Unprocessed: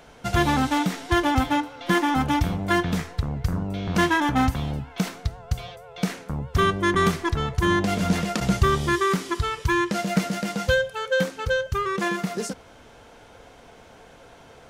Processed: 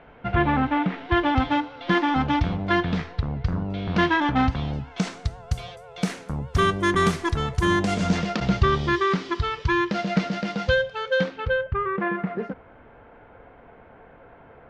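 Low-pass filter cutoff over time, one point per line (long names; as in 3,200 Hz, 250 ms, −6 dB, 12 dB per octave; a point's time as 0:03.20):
low-pass filter 24 dB per octave
0:00.80 2,600 Hz
0:01.52 4,400 Hz
0:04.49 4,400 Hz
0:05.42 11,000 Hz
0:07.77 11,000 Hz
0:08.38 4,800 Hz
0:11.17 4,800 Hz
0:11.78 2,100 Hz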